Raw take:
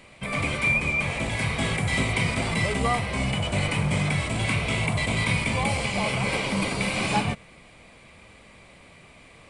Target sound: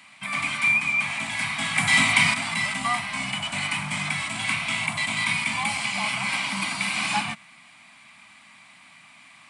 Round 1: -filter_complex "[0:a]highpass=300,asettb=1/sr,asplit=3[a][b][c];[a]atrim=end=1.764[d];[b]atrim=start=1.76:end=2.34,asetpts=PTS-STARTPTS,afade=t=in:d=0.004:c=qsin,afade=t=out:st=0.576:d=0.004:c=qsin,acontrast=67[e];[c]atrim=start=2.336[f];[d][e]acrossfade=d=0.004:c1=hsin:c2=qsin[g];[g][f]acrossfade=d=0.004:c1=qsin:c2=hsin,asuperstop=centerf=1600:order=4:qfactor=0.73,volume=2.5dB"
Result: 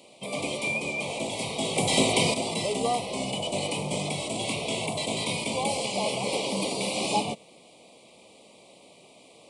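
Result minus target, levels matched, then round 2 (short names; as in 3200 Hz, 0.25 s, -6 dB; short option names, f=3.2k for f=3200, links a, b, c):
500 Hz band +19.0 dB
-filter_complex "[0:a]highpass=300,asettb=1/sr,asplit=3[a][b][c];[a]atrim=end=1.764[d];[b]atrim=start=1.76:end=2.34,asetpts=PTS-STARTPTS,afade=t=in:d=0.004:c=qsin,afade=t=out:st=0.576:d=0.004:c=qsin,acontrast=67[e];[c]atrim=start=2.336[f];[d][e]acrossfade=d=0.004:c1=hsin:c2=qsin[g];[g][f]acrossfade=d=0.004:c1=qsin:c2=hsin,asuperstop=centerf=450:order=4:qfactor=0.73,volume=2.5dB"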